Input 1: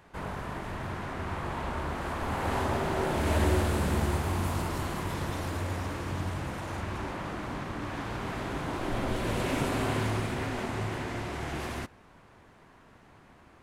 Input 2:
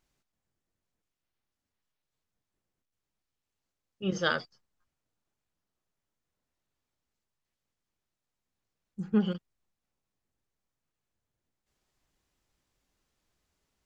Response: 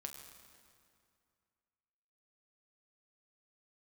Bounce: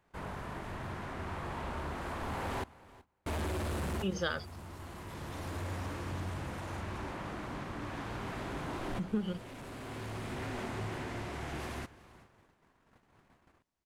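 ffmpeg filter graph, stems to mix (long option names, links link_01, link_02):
-filter_complex "[0:a]volume=28dB,asoftclip=hard,volume=-28dB,volume=-5.5dB,asplit=3[link_01][link_02][link_03];[link_01]atrim=end=2.64,asetpts=PTS-STARTPTS,afade=type=out:start_time=2.636:duration=0.004:curve=hsin[link_04];[link_02]atrim=start=2.64:end=3.26,asetpts=PTS-STARTPTS,volume=0[link_05];[link_03]atrim=start=3.26,asetpts=PTS-STARTPTS,afade=type=in:duration=0.004:curve=hsin[link_06];[link_04][link_05][link_06]concat=n=3:v=0:a=1,asplit=3[link_07][link_08][link_09];[link_08]volume=-17dB[link_10];[link_09]volume=-20dB[link_11];[1:a]acompressor=threshold=-29dB:ratio=6,volume=-0.5dB,asplit=2[link_12][link_13];[link_13]apad=whole_len=600747[link_14];[link_07][link_14]sidechaincompress=threshold=-46dB:ratio=12:attack=25:release=1030[link_15];[2:a]atrim=start_sample=2205[link_16];[link_10][link_16]afir=irnorm=-1:irlink=0[link_17];[link_11]aecho=0:1:376|752|1128|1504:1|0.27|0.0729|0.0197[link_18];[link_15][link_12][link_17][link_18]amix=inputs=4:normalize=0,agate=range=-11dB:threshold=-59dB:ratio=16:detection=peak"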